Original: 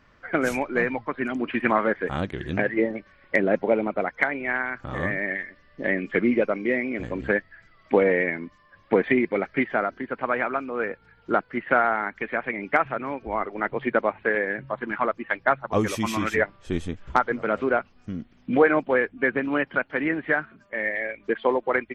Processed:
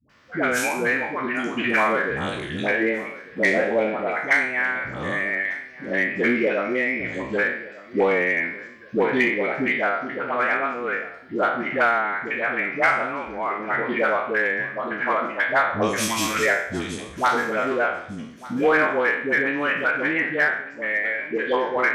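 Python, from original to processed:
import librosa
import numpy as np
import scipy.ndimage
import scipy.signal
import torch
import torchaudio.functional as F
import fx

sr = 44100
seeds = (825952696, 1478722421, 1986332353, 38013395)

p1 = fx.spec_trails(x, sr, decay_s=0.63)
p2 = scipy.signal.sosfilt(scipy.signal.butter(2, 93.0, 'highpass', fs=sr, output='sos'), p1)
p3 = fx.high_shelf(p2, sr, hz=2200.0, db=11.0)
p4 = fx.dispersion(p3, sr, late='highs', ms=97.0, hz=490.0)
p5 = np.clip(p4, -10.0 ** (-13.0 / 20.0), 10.0 ** (-13.0 / 20.0))
p6 = p4 + (p5 * librosa.db_to_amplitude(-6.5))
p7 = fx.echo_feedback(p6, sr, ms=1198, feedback_pct=33, wet_db=-19.5)
y = p7 * librosa.db_to_amplitude(-5.5)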